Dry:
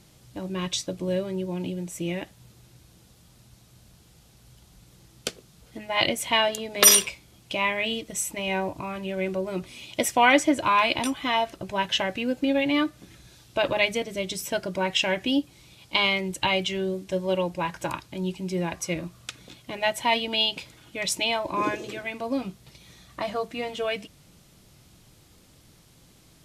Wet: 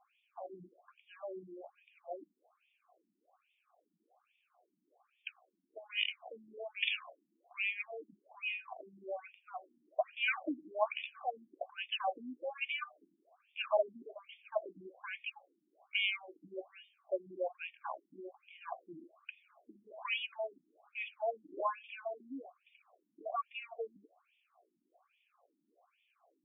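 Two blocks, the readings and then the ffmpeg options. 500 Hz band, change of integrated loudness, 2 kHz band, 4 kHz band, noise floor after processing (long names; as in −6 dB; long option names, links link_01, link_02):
−12.5 dB, −14.5 dB, −12.0 dB, −16.0 dB, −82 dBFS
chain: -filter_complex "[0:a]asplit=3[link_01][link_02][link_03];[link_01]bandpass=frequency=730:width_type=q:width=8,volume=0dB[link_04];[link_02]bandpass=frequency=1090:width_type=q:width=8,volume=-6dB[link_05];[link_03]bandpass=frequency=2440:width_type=q:width=8,volume=-9dB[link_06];[link_04][link_05][link_06]amix=inputs=3:normalize=0,afftfilt=real='re*between(b*sr/1024,240*pow(2600/240,0.5+0.5*sin(2*PI*1.2*pts/sr))/1.41,240*pow(2600/240,0.5+0.5*sin(2*PI*1.2*pts/sr))*1.41)':imag='im*between(b*sr/1024,240*pow(2600/240,0.5+0.5*sin(2*PI*1.2*pts/sr))/1.41,240*pow(2600/240,0.5+0.5*sin(2*PI*1.2*pts/sr))*1.41)':win_size=1024:overlap=0.75,volume=6.5dB"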